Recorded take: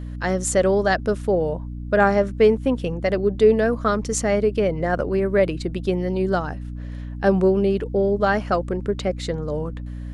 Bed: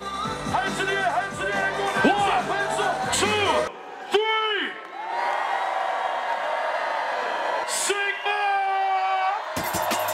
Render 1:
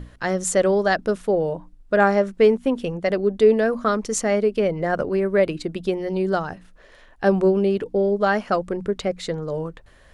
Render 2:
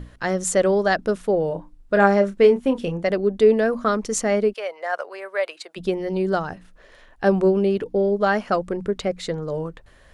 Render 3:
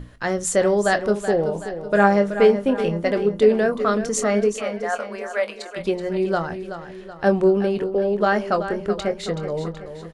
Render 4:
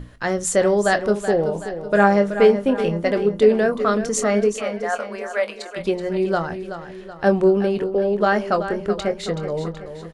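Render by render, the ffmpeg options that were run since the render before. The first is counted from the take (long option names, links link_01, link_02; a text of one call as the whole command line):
ffmpeg -i in.wav -af "bandreject=frequency=60:width_type=h:width=6,bandreject=frequency=120:width_type=h:width=6,bandreject=frequency=180:width_type=h:width=6,bandreject=frequency=240:width_type=h:width=6,bandreject=frequency=300:width_type=h:width=6" out.wav
ffmpeg -i in.wav -filter_complex "[0:a]asettb=1/sr,asplit=3[link_01][link_02][link_03];[link_01]atrim=end=1.484[link_04];[link_02]atrim=start=1.48:end=3.05,asetpts=PTS-STARTPTS,afade=type=in:duration=0.004:curve=qsin,afade=type=out:start_time=1.566:duration=0.004:curve=qsin,asplit=2[link_05][link_06];[link_06]adelay=30,volume=-9dB[link_07];[link_05][link_07]amix=inputs=2:normalize=0,atrim=end_sample=69237[link_08];[link_03]atrim=start=3.046[link_09];[link_04][link_08]acrossfade=duration=0.004:curve1=hsin:curve2=qsin[link_10];[link_10][link_09]acrossfade=duration=0.004:curve1=qsin:curve2=hsin,asplit=3[link_11][link_12][link_13];[link_11]afade=type=out:start_time=4.52:duration=0.02[link_14];[link_12]highpass=frequency=640:width=0.5412,highpass=frequency=640:width=1.3066,afade=type=in:start_time=4.52:duration=0.02,afade=type=out:start_time=5.76:duration=0.02[link_15];[link_13]afade=type=in:start_time=5.76:duration=0.02[link_16];[link_14][link_15][link_16]amix=inputs=3:normalize=0,asettb=1/sr,asplit=3[link_17][link_18][link_19];[link_17]atrim=end=7.674[link_20];[link_18]atrim=start=7.67:end=8.23,asetpts=PTS-STARTPTS,afade=type=in:duration=0.004:curve=qsin,afade=type=out:start_time=0.556:duration=0.004:curve=qsin,bandreject=frequency=7800:width=11[link_21];[link_19]atrim=start=8.226[link_22];[link_20][link_21]acrossfade=duration=0.004:curve1=hsin:curve2=qsin[link_23];[link_23][link_22]acrossfade=duration=0.004:curve1=qsin:curve2=hsin" out.wav
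ffmpeg -i in.wav -filter_complex "[0:a]asplit=2[link_01][link_02];[link_02]adelay=24,volume=-11dB[link_03];[link_01][link_03]amix=inputs=2:normalize=0,aecho=1:1:377|754|1131|1508|1885:0.299|0.146|0.0717|0.0351|0.0172" out.wav
ffmpeg -i in.wav -af "volume=1dB,alimiter=limit=-3dB:level=0:latency=1" out.wav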